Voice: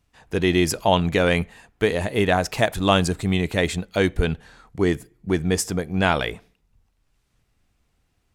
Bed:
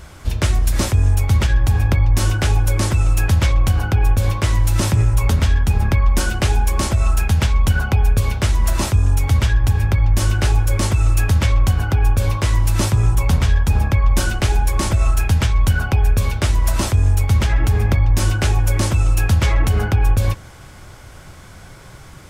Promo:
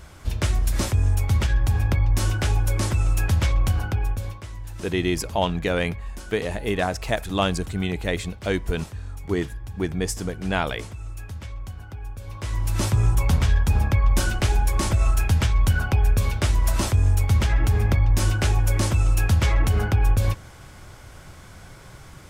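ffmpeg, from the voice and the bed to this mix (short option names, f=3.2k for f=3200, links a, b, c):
-filter_complex "[0:a]adelay=4500,volume=-4.5dB[a];[1:a]volume=10.5dB,afade=t=out:st=3.71:d=0.73:silence=0.188365,afade=t=in:st=12.26:d=0.72:silence=0.158489[b];[a][b]amix=inputs=2:normalize=0"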